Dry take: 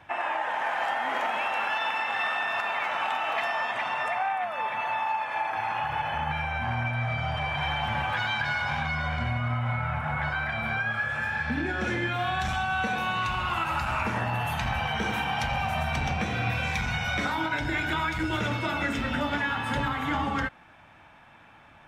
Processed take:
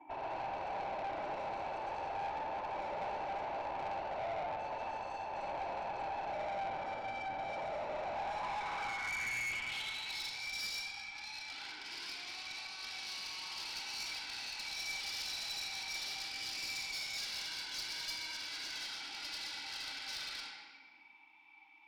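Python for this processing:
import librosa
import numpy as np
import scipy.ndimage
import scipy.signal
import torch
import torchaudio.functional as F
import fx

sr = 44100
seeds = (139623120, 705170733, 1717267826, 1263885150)

y = fx.vowel_filter(x, sr, vowel='u')
y = fx.hum_notches(y, sr, base_hz=50, count=6)
y = fx.fold_sine(y, sr, drive_db=17, ceiling_db=-26.0)
y = fx.small_body(y, sr, hz=(790.0, 1500.0, 2300.0), ring_ms=85, db=10)
y = fx.filter_sweep_bandpass(y, sr, from_hz=570.0, to_hz=4900.0, start_s=7.91, end_s=10.22, q=3.1)
y = fx.room_shoebox(y, sr, seeds[0], volume_m3=2300.0, walls='mixed', distance_m=2.9)
y = fx.tube_stage(y, sr, drive_db=32.0, bias=0.4)
y = F.gain(torch.from_numpy(y), -3.0).numpy()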